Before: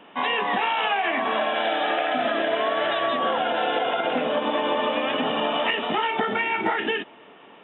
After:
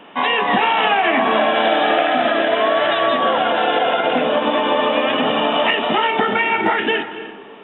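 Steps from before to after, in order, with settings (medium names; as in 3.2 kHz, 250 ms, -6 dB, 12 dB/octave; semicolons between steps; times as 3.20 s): 0.49–2.03 s: bass shelf 320 Hz +7 dB; reverberation RT60 1.2 s, pre-delay 206 ms, DRR 11 dB; trim +6.5 dB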